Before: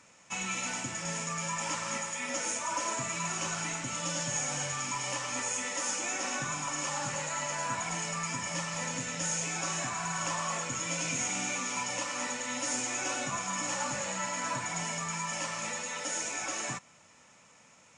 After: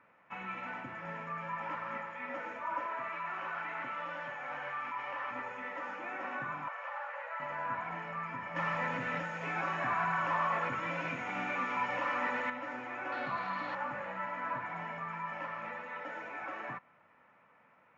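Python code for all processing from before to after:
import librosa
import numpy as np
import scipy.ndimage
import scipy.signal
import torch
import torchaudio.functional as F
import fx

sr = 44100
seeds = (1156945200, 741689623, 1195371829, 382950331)

y = fx.chain(x, sr, fx.highpass(hz=760.0, slope=6),
    fx.high_shelf(hz=7200.0, db=-10.5),
    fx.env_flatten(amount_pct=100), at=(2.86, 5.31))
y = fx.chain(y, sr, fx.cheby_ripple_highpass(hz=470.0, ripple_db=3),
    fx.high_shelf(hz=7900.0, db=-7.0), at=(6.68, 7.4))
y = fx.chain(y, sr, fx.law_mismatch(coded='mu'),
    fx.high_shelf(hz=4900.0, db=10.0),
    fx.env_flatten(amount_pct=70), at=(8.56, 12.5))
y = fx.chain(y, sr, fx.high_shelf(hz=6700.0, db=10.5),
    fx.resample_bad(factor=4, down='none', up='hold'),
    fx.env_flatten(amount_pct=70), at=(13.12, 13.75))
y = scipy.signal.sosfilt(scipy.signal.butter(4, 1800.0, 'lowpass', fs=sr, output='sos'), y)
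y = fx.tilt_eq(y, sr, slope=2.5)
y = y * 10.0 ** (-1.5 / 20.0)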